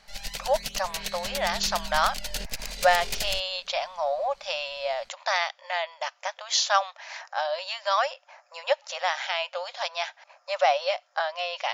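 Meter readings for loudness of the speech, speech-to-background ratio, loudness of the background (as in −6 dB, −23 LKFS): −28.0 LKFS, 5.5 dB, −33.5 LKFS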